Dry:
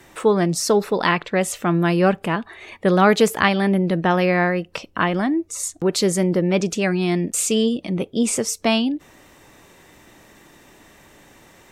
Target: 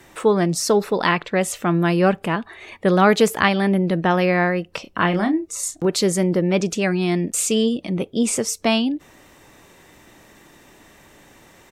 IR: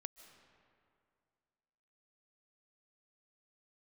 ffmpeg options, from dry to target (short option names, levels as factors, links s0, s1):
-filter_complex "[0:a]asplit=3[s0][s1][s2];[s0]afade=t=out:st=4.84:d=0.02[s3];[s1]asplit=2[s4][s5];[s5]adelay=29,volume=0.473[s6];[s4][s6]amix=inputs=2:normalize=0,afade=t=in:st=4.84:d=0.02,afade=t=out:st=5.85:d=0.02[s7];[s2]afade=t=in:st=5.85:d=0.02[s8];[s3][s7][s8]amix=inputs=3:normalize=0"